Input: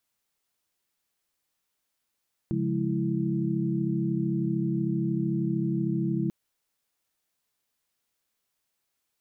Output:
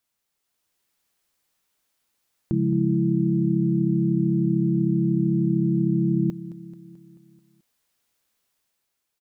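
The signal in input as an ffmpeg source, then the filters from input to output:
-f lavfi -i "aevalsrc='0.0316*(sin(2*PI*138.59*t)+sin(2*PI*174.61*t)+sin(2*PI*207.65*t)+sin(2*PI*329.63*t))':d=3.79:s=44100"
-af "dynaudnorm=f=110:g=11:m=5.5dB,aecho=1:1:218|436|654|872|1090|1308:0.158|0.0919|0.0533|0.0309|0.0179|0.0104"

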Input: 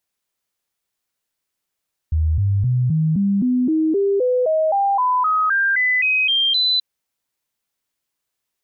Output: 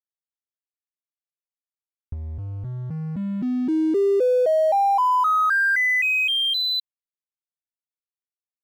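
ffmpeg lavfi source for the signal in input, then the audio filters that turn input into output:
-f lavfi -i "aevalsrc='0.188*clip(min(mod(t,0.26),0.26-mod(t,0.26))/0.005,0,1)*sin(2*PI*78.9*pow(2,floor(t/0.26)/3)*mod(t,0.26))':d=4.68:s=44100"
-filter_complex "[0:a]lowpass=f=2.8k:p=1,acrossover=split=300|1600[a][b][c];[a]acompressor=threshold=-28dB:ratio=10[d];[d][b][c]amix=inputs=3:normalize=0,aeval=exprs='sgn(val(0))*max(abs(val(0))-0.00891,0)':c=same"

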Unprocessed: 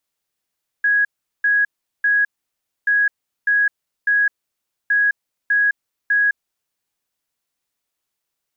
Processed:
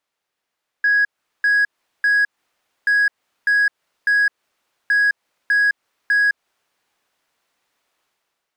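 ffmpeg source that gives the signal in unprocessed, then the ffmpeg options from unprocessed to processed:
-f lavfi -i "aevalsrc='0.224*sin(2*PI*1660*t)*clip(min(mod(mod(t,2.03),0.6),0.21-mod(mod(t,2.03),0.6))/0.005,0,1)*lt(mod(t,2.03),1.8)':d=6.09:s=44100"
-filter_complex "[0:a]dynaudnorm=f=800:g=3:m=10dB,asplit=2[a][b];[b]highpass=f=720:p=1,volume=14dB,asoftclip=type=tanh:threshold=-1dB[c];[a][c]amix=inputs=2:normalize=0,lowpass=f=1.5k:p=1,volume=-6dB,alimiter=limit=-12.5dB:level=0:latency=1:release=165"

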